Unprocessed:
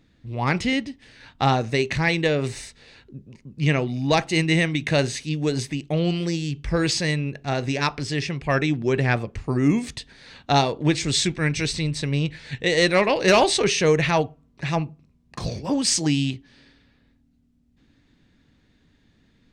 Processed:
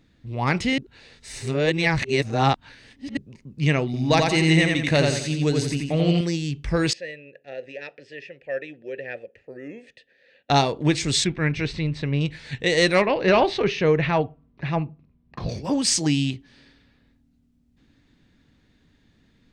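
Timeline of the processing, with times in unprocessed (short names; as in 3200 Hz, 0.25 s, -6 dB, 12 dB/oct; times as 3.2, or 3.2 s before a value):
0.78–3.17 reverse
3.85–6.21 feedback echo 87 ms, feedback 40%, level -3.5 dB
6.93–10.5 vowel filter e
11.24–12.21 LPF 2800 Hz
13.02–15.49 air absorption 270 m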